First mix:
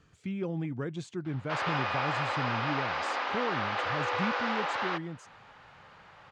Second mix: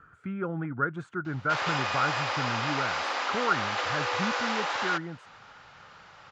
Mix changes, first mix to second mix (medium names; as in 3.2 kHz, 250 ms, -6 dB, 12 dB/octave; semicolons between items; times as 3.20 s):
speech: add resonant low-pass 1.4 kHz, resonance Q 11; master: remove distance through air 210 m